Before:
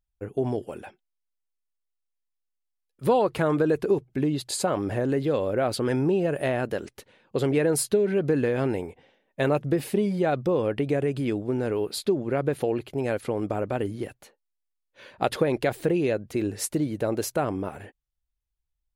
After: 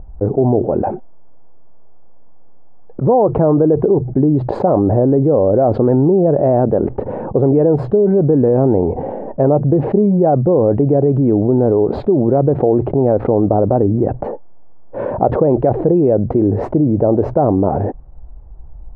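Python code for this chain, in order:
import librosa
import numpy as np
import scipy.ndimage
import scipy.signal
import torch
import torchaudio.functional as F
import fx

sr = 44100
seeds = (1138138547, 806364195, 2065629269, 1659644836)

y = scipy.signal.sosfilt(scipy.signal.cheby1(3, 1.0, 790.0, 'lowpass', fs=sr, output='sos'), x)
y = fx.env_flatten(y, sr, amount_pct=70)
y = y * 10.0 ** (8.5 / 20.0)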